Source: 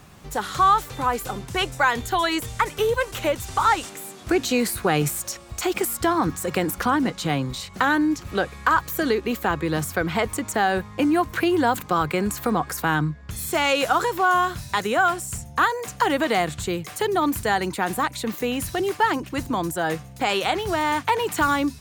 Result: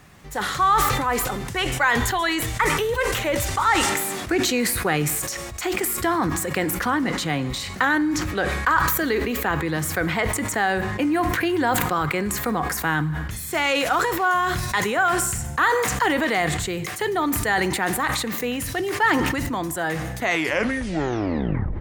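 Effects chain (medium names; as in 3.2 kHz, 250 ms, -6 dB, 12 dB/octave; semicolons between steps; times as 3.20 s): tape stop on the ending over 1.73 s; peaking EQ 1.9 kHz +7 dB 0.45 oct; two-slope reverb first 0.85 s, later 2.2 s, from -24 dB, DRR 15 dB; decay stretcher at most 27 dB/s; trim -2.5 dB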